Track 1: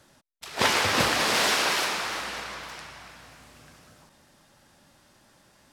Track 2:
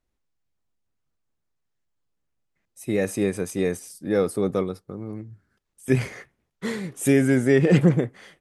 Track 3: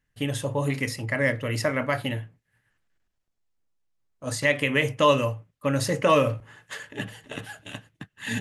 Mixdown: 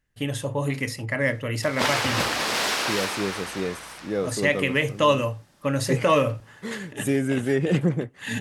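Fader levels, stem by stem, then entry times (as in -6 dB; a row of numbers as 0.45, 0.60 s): -1.5, -5.0, 0.0 dB; 1.20, 0.00, 0.00 s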